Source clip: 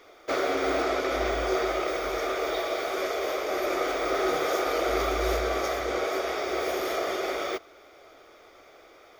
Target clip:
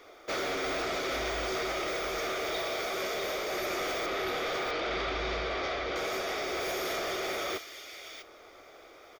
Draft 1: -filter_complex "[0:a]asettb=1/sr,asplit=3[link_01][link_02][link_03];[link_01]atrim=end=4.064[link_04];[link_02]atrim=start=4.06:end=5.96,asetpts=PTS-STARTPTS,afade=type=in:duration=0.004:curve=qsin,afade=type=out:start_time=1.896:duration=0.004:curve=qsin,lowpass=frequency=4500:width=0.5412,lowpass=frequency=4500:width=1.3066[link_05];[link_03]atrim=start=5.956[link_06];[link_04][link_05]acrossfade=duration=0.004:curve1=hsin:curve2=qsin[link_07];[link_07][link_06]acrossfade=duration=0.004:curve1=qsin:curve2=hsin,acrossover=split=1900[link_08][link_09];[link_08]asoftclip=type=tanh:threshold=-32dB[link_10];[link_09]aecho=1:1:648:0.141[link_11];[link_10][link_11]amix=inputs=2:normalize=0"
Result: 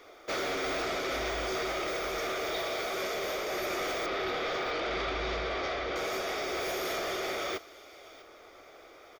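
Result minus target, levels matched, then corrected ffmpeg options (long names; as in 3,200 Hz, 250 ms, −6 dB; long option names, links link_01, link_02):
echo-to-direct −11 dB
-filter_complex "[0:a]asettb=1/sr,asplit=3[link_01][link_02][link_03];[link_01]atrim=end=4.064[link_04];[link_02]atrim=start=4.06:end=5.96,asetpts=PTS-STARTPTS,afade=type=in:duration=0.004:curve=qsin,afade=type=out:start_time=1.896:duration=0.004:curve=qsin,lowpass=frequency=4500:width=0.5412,lowpass=frequency=4500:width=1.3066[link_05];[link_03]atrim=start=5.956[link_06];[link_04][link_05]acrossfade=duration=0.004:curve1=hsin:curve2=qsin[link_07];[link_07][link_06]acrossfade=duration=0.004:curve1=qsin:curve2=hsin,acrossover=split=1900[link_08][link_09];[link_08]asoftclip=type=tanh:threshold=-32dB[link_10];[link_09]aecho=1:1:648:0.501[link_11];[link_10][link_11]amix=inputs=2:normalize=0"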